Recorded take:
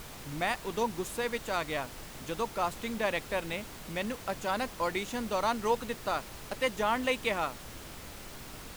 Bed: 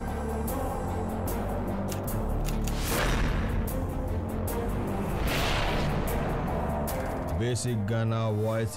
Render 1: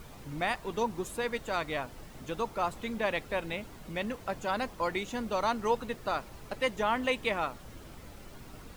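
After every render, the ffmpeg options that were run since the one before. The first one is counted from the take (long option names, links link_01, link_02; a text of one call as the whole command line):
ffmpeg -i in.wav -af "afftdn=noise_reduction=9:noise_floor=-46" out.wav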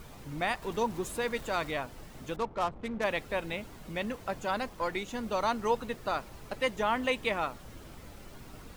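ffmpeg -i in.wav -filter_complex "[0:a]asettb=1/sr,asplit=3[link_01][link_02][link_03];[link_01]atrim=end=0.624[link_04];[link_02]atrim=start=0.62:end=1.71,asetpts=PTS-STARTPTS,afade=type=in:duration=0.004:curve=qsin,afade=type=out:start_time=1.086:duration=0.004:curve=qsin,aeval=exprs='val(0)+0.5*0.00531*sgn(val(0))':channel_layout=same[link_05];[link_03]atrim=start=1.706[link_06];[link_04][link_05]acrossfade=duration=0.004:curve1=hsin:curve2=qsin[link_07];[link_07][link_06]acrossfade=duration=0.004:curve1=qsin:curve2=hsin,asettb=1/sr,asplit=3[link_08][link_09][link_10];[link_08]atrim=end=2.364[link_11];[link_09]atrim=start=2.36:end=3.04,asetpts=PTS-STARTPTS,afade=type=in:duration=0.004:curve=qsin,afade=type=out:start_time=0.676:duration=0.004:curve=qsin,adynamicsmooth=sensitivity=7.5:basefreq=560[link_12];[link_10]atrim=start=3.036[link_13];[link_11][link_12]acrossfade=duration=0.004:curve1=hsin:curve2=qsin[link_14];[link_14][link_13]acrossfade=duration=0.004:curve1=qsin:curve2=hsin,asettb=1/sr,asplit=3[link_15][link_16][link_17];[link_15]atrim=end=4.584[link_18];[link_16]atrim=start=4.58:end=5.23,asetpts=PTS-STARTPTS,afade=type=in:duration=0.004:curve=qsin,afade=type=out:start_time=0.646:duration=0.004:curve=qsin,aeval=exprs='if(lt(val(0),0),0.708*val(0),val(0))':channel_layout=same[link_19];[link_17]atrim=start=5.226[link_20];[link_18][link_19]acrossfade=duration=0.004:curve1=hsin:curve2=qsin[link_21];[link_21][link_20]acrossfade=duration=0.004:curve1=qsin:curve2=hsin" out.wav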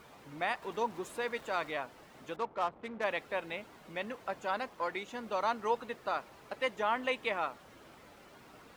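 ffmpeg -i in.wav -af "highpass=frequency=550:poles=1,highshelf=frequency=4100:gain=-11" out.wav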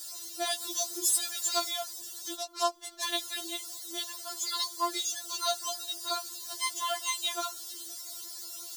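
ffmpeg -i in.wav -af "aexciter=amount=9.1:drive=10:freq=3700,afftfilt=real='re*4*eq(mod(b,16),0)':imag='im*4*eq(mod(b,16),0)':win_size=2048:overlap=0.75" out.wav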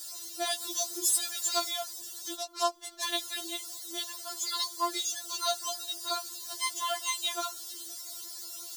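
ffmpeg -i in.wav -af anull out.wav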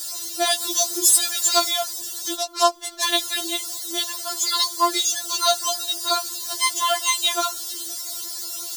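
ffmpeg -i in.wav -af "volume=11dB" out.wav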